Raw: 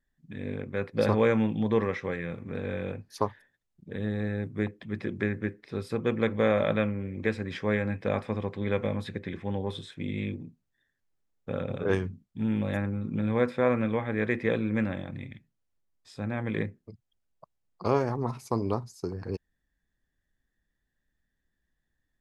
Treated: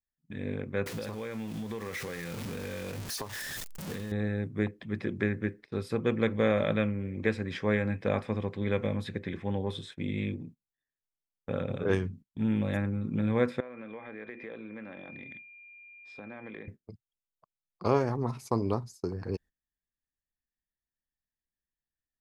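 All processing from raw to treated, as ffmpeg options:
ffmpeg -i in.wav -filter_complex "[0:a]asettb=1/sr,asplit=3[link_01][link_02][link_03];[link_01]atrim=end=0.864[link_04];[link_02]atrim=start=0.86:end=4.12,asetpts=PTS-STARTPTS,afade=type=in:duration=0.004:curve=qsin,afade=type=out:start_time=3.256:duration=0.004:curve=qsin,aeval=exprs='val(0)+0.5*0.0168*sgn(val(0))':channel_layout=same,highshelf=frequency=2600:gain=9,acompressor=threshold=-33dB:ratio=8:attack=3.2:release=140:knee=1:detection=peak[link_05];[link_03]atrim=start=4.116[link_06];[link_04][link_05]acrossfade=duration=0.004:curve1=hsin:curve2=qsin[link_07];[link_07][link_06]acrossfade=duration=0.004:curve1=qsin:curve2=hsin,asettb=1/sr,asplit=3[link_08][link_09][link_10];[link_08]atrim=end=13.604[link_11];[link_09]atrim=start=13.6:end=16.68,asetpts=PTS-STARTPTS,afade=type=in:duration=0.004:curve=qsin,afade=type=out:start_time=3.076:duration=0.004:curve=qsin,highpass=260,lowpass=3500,aeval=exprs='val(0)+0.00631*sin(2*PI*2400*n/s)':channel_layout=same,acompressor=threshold=-40dB:ratio=5:attack=3.2:release=140:knee=1:detection=peak[link_12];[link_10]atrim=start=16.676[link_13];[link_11][link_12]acrossfade=duration=0.004:curve1=hsin:curve2=qsin[link_14];[link_14][link_13]acrossfade=duration=0.004:curve1=qsin:curve2=hsin,adynamicequalizer=threshold=0.01:dfrequency=880:dqfactor=0.77:tfrequency=880:tqfactor=0.77:attack=5:release=100:ratio=0.375:range=2.5:mode=cutabove:tftype=bell,agate=range=-18dB:threshold=-47dB:ratio=16:detection=peak" out.wav

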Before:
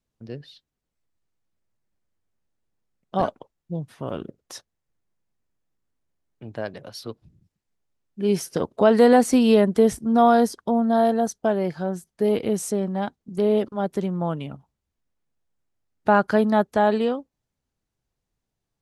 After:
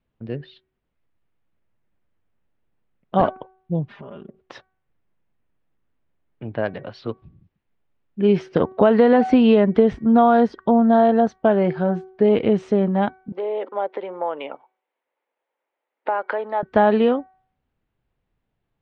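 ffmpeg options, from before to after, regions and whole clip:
ffmpeg -i in.wav -filter_complex "[0:a]asettb=1/sr,asplit=3[link_01][link_02][link_03];[link_01]atrim=end=3.884[link_04];[link_02]atrim=start=3.88:end=4.42,asetpts=PTS-STARTPTS,afade=type=in:duration=0.004:curve=qsin,afade=type=out:start_time=0.536:duration=0.004:curve=qsin,aecho=1:1:5:0.85,atrim=end_sample=23814,acompressor=threshold=-44dB:ratio=4:attack=3.2:release=140:knee=1:detection=peak[link_05];[link_03]atrim=start=4.416[link_06];[link_04][link_05]acrossfade=duration=0.004:curve1=hsin:curve2=qsin[link_07];[link_07][link_06]acrossfade=duration=0.004:curve1=qsin:curve2=hsin,asettb=1/sr,asplit=3[link_08][link_09][link_10];[link_08]atrim=end=13.324[link_11];[link_09]atrim=start=13.32:end=16.63,asetpts=PTS-STARTPTS,afade=type=in:duration=0.004:curve=qsin,afade=type=out:start_time=3.306:duration=0.004:curve=qsin,acompressor=threshold=-27dB:ratio=10:attack=3.2:release=140:knee=1:detection=peak,highpass=frequency=380:width=0.5412,highpass=frequency=380:width=1.3066,equalizer=frequency=530:width_type=q:width=4:gain=7,equalizer=frequency=900:width_type=q:width=4:gain=8,equalizer=frequency=2100:width_type=q:width=4:gain=5,lowpass=frequency=4500:width=0.5412,lowpass=frequency=4500:width=1.3066[link_12];[link_10]atrim=start=16.626[link_13];[link_11][link_12]acrossfade=duration=0.004:curve1=hsin:curve2=qsin[link_14];[link_14][link_13]acrossfade=duration=0.004:curve1=qsin:curve2=hsin,lowpass=frequency=3100:width=0.5412,lowpass=frequency=3100:width=1.3066,bandreject=frequency=376.9:width_type=h:width=4,bandreject=frequency=753.8:width_type=h:width=4,bandreject=frequency=1130.7:width_type=h:width=4,bandreject=frequency=1507.6:width_type=h:width=4,bandreject=frequency=1884.5:width_type=h:width=4,bandreject=frequency=2261.4:width_type=h:width=4,acompressor=threshold=-17dB:ratio=6,volume=6.5dB" out.wav

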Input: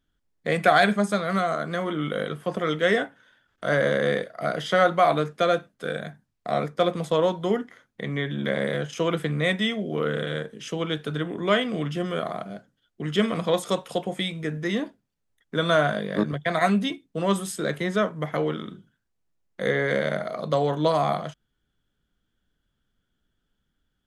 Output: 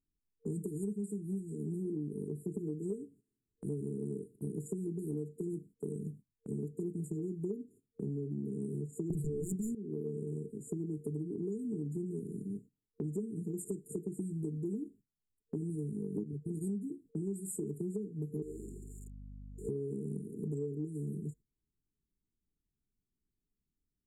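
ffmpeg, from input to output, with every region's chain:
ffmpeg -i in.wav -filter_complex "[0:a]asettb=1/sr,asplit=3[link_01][link_02][link_03];[link_01]atrim=end=9.104[link_04];[link_02]atrim=start=9.1:end=9.75,asetpts=PTS-STARTPTS,afade=type=in:duration=0.004:curve=qsin,afade=type=out:start_time=0.646:duration=0.004:curve=qsin,equalizer=frequency=140:width=5.9:gain=12,aeval=exprs='0.316*sin(PI/2*3.98*val(0)/0.316)':channel_layout=same[link_05];[link_03]atrim=start=9.746[link_06];[link_04][link_05]acrossfade=duration=0.004:curve1=hsin:curve2=qsin[link_07];[link_07][link_06]acrossfade=duration=0.004:curve1=qsin:curve2=hsin,asettb=1/sr,asplit=3[link_08][link_09][link_10];[link_08]atrim=end=18.424[link_11];[link_09]atrim=start=18.42:end=19.69,asetpts=PTS-STARTPTS,afade=type=in:duration=0.004:curve=qsin,afade=type=out:start_time=1.266:duration=0.004:curve=qsin,aeval=exprs='val(0)+0.5*0.0237*sgn(val(0))':channel_layout=same,highpass=630,lowpass=6400,aeval=exprs='val(0)+0.00447*(sin(2*PI*50*n/s)+sin(2*PI*2*50*n/s)/2+sin(2*PI*3*50*n/s)/3+sin(2*PI*4*50*n/s)/4+sin(2*PI*5*50*n/s)/5)':channel_layout=same[link_12];[link_10]atrim=start=19.686[link_13];[link_11][link_12]acrossfade=duration=0.004:curve1=hsin:curve2=qsin[link_14];[link_14][link_13]acrossfade=duration=0.004:curve1=qsin:curve2=hsin,afftfilt=real='re*(1-between(b*sr/4096,460,6900))':imag='im*(1-between(b*sr/4096,460,6900))':win_size=4096:overlap=0.75,agate=range=-12dB:threshold=-50dB:ratio=16:detection=peak,acompressor=threshold=-34dB:ratio=12" out.wav

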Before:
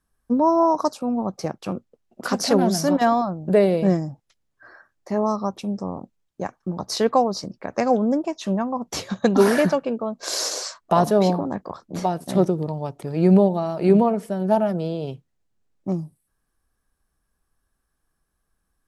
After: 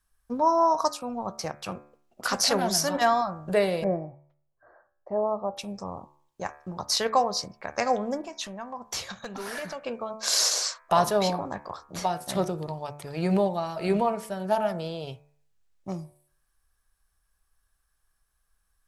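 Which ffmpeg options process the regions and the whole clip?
ffmpeg -i in.wav -filter_complex "[0:a]asettb=1/sr,asplit=3[link_01][link_02][link_03];[link_01]atrim=end=3.844[link_04];[link_02]atrim=start=3.84:end=5.57,asetpts=PTS-STARTPTS,afade=type=in:duration=0.004:curve=qsin,afade=type=out:start_time=1.726:duration=0.004:curve=qsin,lowpass=frequency=610:width_type=q:width=1.7,lowshelf=frequency=210:gain=-5[link_05];[link_03]atrim=start=5.566[link_06];[link_04][link_05]acrossfade=duration=0.004:curve1=hsin:curve2=qsin[link_07];[link_07][link_06]acrossfade=duration=0.004:curve1=qsin:curve2=hsin,asettb=1/sr,asplit=3[link_08][link_09][link_10];[link_08]atrim=end=8.214[link_11];[link_09]atrim=start=8.21:end=9.83,asetpts=PTS-STARTPTS,afade=type=in:duration=0.004:curve=qsin,afade=type=out:start_time=1.616:duration=0.004:curve=qsin,acompressor=threshold=-30dB:ratio=3:attack=3.2:release=140:knee=1:detection=peak,asoftclip=type=hard:threshold=-23dB[link_12];[link_10]atrim=start=9.826[link_13];[link_11][link_12]acrossfade=duration=0.004:curve1=hsin:curve2=qsin[link_14];[link_14][link_13]acrossfade=duration=0.004:curve1=qsin:curve2=hsin,equalizer=frequency=260:width=0.53:gain=-15,bandreject=frequency=72.94:width_type=h:width=4,bandreject=frequency=145.88:width_type=h:width=4,bandreject=frequency=218.82:width_type=h:width=4,bandreject=frequency=291.76:width_type=h:width=4,bandreject=frequency=364.7:width_type=h:width=4,bandreject=frequency=437.64:width_type=h:width=4,bandreject=frequency=510.58:width_type=h:width=4,bandreject=frequency=583.52:width_type=h:width=4,bandreject=frequency=656.46:width_type=h:width=4,bandreject=frequency=729.4:width_type=h:width=4,bandreject=frequency=802.34:width_type=h:width=4,bandreject=frequency=875.28:width_type=h:width=4,bandreject=frequency=948.22:width_type=h:width=4,bandreject=frequency=1021.16:width_type=h:width=4,bandreject=frequency=1094.1:width_type=h:width=4,bandreject=frequency=1167.04:width_type=h:width=4,bandreject=frequency=1239.98:width_type=h:width=4,bandreject=frequency=1312.92:width_type=h:width=4,bandreject=frequency=1385.86:width_type=h:width=4,bandreject=frequency=1458.8:width_type=h:width=4,bandreject=frequency=1531.74:width_type=h:width=4,bandreject=frequency=1604.68:width_type=h:width=4,bandreject=frequency=1677.62:width_type=h:width=4,bandreject=frequency=1750.56:width_type=h:width=4,bandreject=frequency=1823.5:width_type=h:width=4,bandreject=frequency=1896.44:width_type=h:width=4,bandreject=frequency=1969.38:width_type=h:width=4,bandreject=frequency=2042.32:width_type=h:width=4,bandreject=frequency=2115.26:width_type=h:width=4,bandreject=frequency=2188.2:width_type=h:width=4,bandreject=frequency=2261.14:width_type=h:width=4,bandreject=frequency=2334.08:width_type=h:width=4,bandreject=frequency=2407.02:width_type=h:width=4,bandreject=frequency=2479.96:width_type=h:width=4,bandreject=frequency=2552.9:width_type=h:width=4,volume=3dB" out.wav

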